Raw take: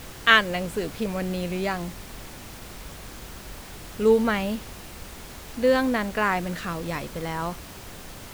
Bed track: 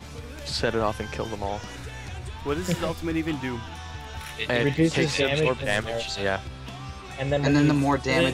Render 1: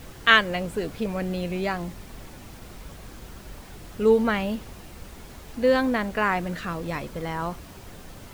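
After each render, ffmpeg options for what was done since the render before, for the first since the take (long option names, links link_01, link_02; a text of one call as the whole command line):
ffmpeg -i in.wav -af "afftdn=noise_reduction=6:noise_floor=-42" out.wav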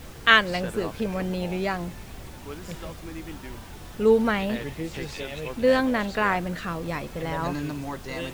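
ffmpeg -i in.wav -i bed.wav -filter_complex "[1:a]volume=-11.5dB[link_01];[0:a][link_01]amix=inputs=2:normalize=0" out.wav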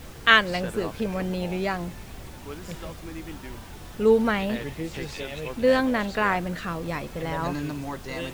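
ffmpeg -i in.wav -af anull out.wav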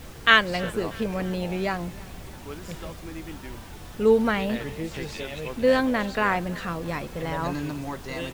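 ffmpeg -i in.wav -af "aecho=1:1:319|638|957|1276:0.0794|0.0437|0.024|0.0132" out.wav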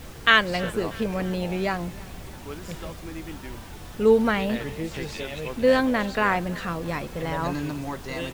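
ffmpeg -i in.wav -af "volume=1dB,alimiter=limit=-3dB:level=0:latency=1" out.wav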